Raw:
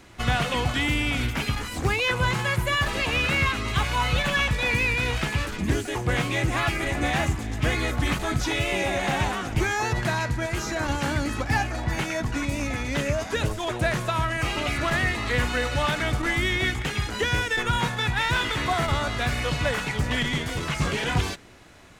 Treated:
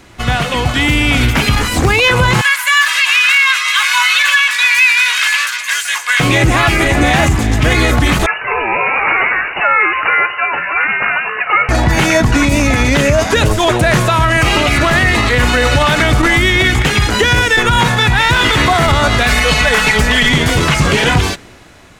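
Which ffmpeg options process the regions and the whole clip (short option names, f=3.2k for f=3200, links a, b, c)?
-filter_complex "[0:a]asettb=1/sr,asplit=3[a][b][c];[a]atrim=end=2.414[d];[b]atrim=start=2.41:end=6.2,asetpts=PTS-STARTPTS,afade=t=in:d=0.004:c=qsin,afade=t=out:st=3.786:d=0.004:c=qsin,highpass=f=1.3k:w=0.5412,highpass=f=1.3k:w=1.3066,aecho=1:1:1.9:0.39,atrim=end_sample=167139[e];[c]atrim=start=6.196[f];[d][e]acrossfade=d=0.004:c1=hsin:c2=qsin[g];[g][f]acrossfade=d=0.004:c1=qsin:c2=hsin,asettb=1/sr,asplit=3[h][i][j];[h]atrim=end=8.264[k];[i]atrim=start=8.26:end=11.69,asetpts=PTS-STARTPTS,afade=t=in:d=0.004:c=qsin,afade=t=out:st=3.426:d=0.004:c=qsin,highpass=1k,aemphasis=mode=reproduction:type=riaa,lowpass=f=2.6k:t=q:w=0.5098,lowpass=f=2.6k:t=q:w=0.6013,lowpass=f=2.6k:t=q:w=0.9,lowpass=f=2.6k:t=q:w=2.563,afreqshift=-3000[l];[j]atrim=start=11.686[m];[k][l]acrossfade=d=0.004:c1=hsin:c2=qsin[n];[n][m]acrossfade=d=0.004:c1=qsin:c2=hsin,asettb=1/sr,asplit=3[o][p][q];[o]atrim=end=19.234[r];[p]atrim=start=19.23:end=20.3,asetpts=PTS-STARTPTS,afade=t=in:d=0.004:c=qsin,afade=t=out:st=1.066:d=0.004:c=qsin,equalizer=f=180:w=0.46:g=-7,aecho=1:1:4.6:0.7,atrim=end_sample=47187[s];[q]atrim=start=20.296[t];[r][s]acrossfade=d=0.004:c1=hsin:c2=qsin[u];[u][t]acrossfade=d=0.004:c1=qsin:c2=hsin,dynaudnorm=f=160:g=13:m=11dB,alimiter=level_in=9.5dB:limit=-1dB:release=50:level=0:latency=1,volume=-1dB"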